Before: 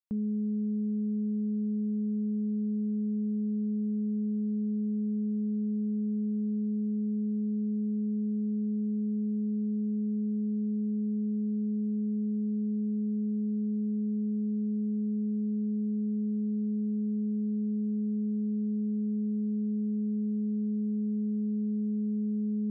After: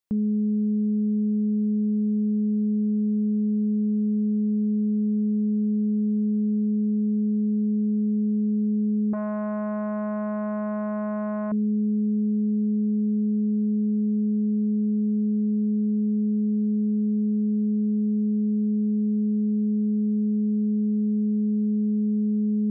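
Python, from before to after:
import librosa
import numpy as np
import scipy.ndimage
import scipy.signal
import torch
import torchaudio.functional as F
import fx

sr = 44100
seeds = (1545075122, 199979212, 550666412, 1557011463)

y = fx.transformer_sat(x, sr, knee_hz=480.0, at=(9.13, 11.52))
y = F.gain(torch.from_numpy(y), 7.0).numpy()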